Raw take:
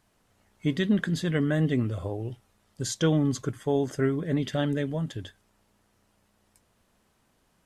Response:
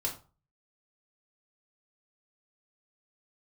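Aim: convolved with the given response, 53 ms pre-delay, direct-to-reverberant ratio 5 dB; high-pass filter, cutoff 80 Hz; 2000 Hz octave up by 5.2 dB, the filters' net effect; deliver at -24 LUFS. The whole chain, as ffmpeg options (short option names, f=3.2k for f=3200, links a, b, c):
-filter_complex "[0:a]highpass=80,equalizer=f=2k:t=o:g=6.5,asplit=2[a][b];[1:a]atrim=start_sample=2205,adelay=53[c];[b][c]afir=irnorm=-1:irlink=0,volume=-8.5dB[d];[a][d]amix=inputs=2:normalize=0,volume=2dB"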